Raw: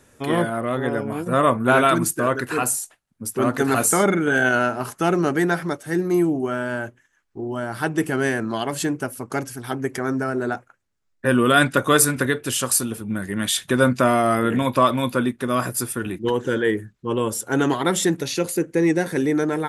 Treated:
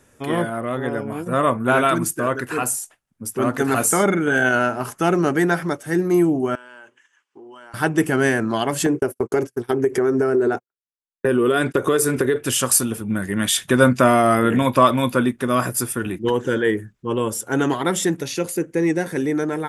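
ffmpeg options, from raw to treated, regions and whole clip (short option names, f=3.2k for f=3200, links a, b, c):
-filter_complex "[0:a]asettb=1/sr,asplit=3[a][b][c];[a]atrim=end=6.554[d];[b]atrim=start=6.55:end=7.74,asetpts=PTS-STARTPTS,afade=t=in:d=0.004:c=qsin,afade=t=out:st=1.186:d=0.004:c=qsin,highpass=470,equalizer=f=660:t=q:w=4:g=-9,equalizer=f=1k:t=q:w=4:g=4,equalizer=f=2.9k:t=q:w=4:g=8,lowpass=f=9.4k:w=0.5412,lowpass=f=9.4k:w=1.3066,acompressor=threshold=-43dB:ratio=6:attack=3.2:release=140:knee=1:detection=peak[e];[c]atrim=start=7.736[f];[d][e]acrossfade=d=0.004:c1=hsin:c2=qsin[g];[g][f]acrossfade=d=0.004:c1=qsin:c2=hsin,asettb=1/sr,asplit=3[h][i][j];[h]atrim=end=8.864[k];[i]atrim=start=8.86:end=12.36,asetpts=PTS-STARTPTS,afade=t=in:d=0.004:c=qsin,afade=t=out:st=3.496:d=0.004:c=qsin,equalizer=f=400:w=3:g=14,agate=range=-45dB:threshold=-31dB:ratio=16:release=100:detection=peak,acompressor=threshold=-18dB:ratio=5:attack=3.2:release=140:knee=1:detection=peak[l];[j]atrim=start=12.356[m];[k][l]acrossfade=d=0.004:c1=hsin:c2=qsin[n];[n][m]acrossfade=d=0.004:c1=qsin:c2=hsin,equalizer=f=4.1k:w=5.1:g=-5,dynaudnorm=f=710:g=11:m=11.5dB,volume=-1dB"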